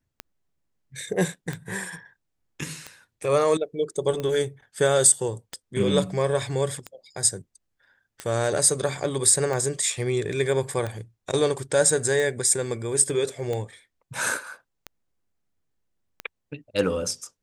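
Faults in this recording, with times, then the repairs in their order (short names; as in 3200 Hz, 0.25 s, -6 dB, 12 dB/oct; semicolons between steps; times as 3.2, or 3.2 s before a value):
tick 45 rpm -17 dBFS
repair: de-click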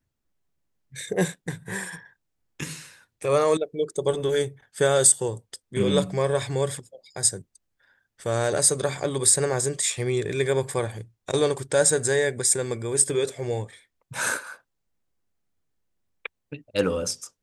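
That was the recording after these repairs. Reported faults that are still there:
none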